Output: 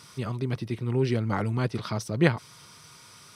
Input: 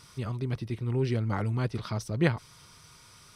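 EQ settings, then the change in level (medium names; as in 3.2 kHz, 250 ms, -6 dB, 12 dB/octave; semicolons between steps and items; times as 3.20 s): high-pass 120 Hz 12 dB/octave; +4.0 dB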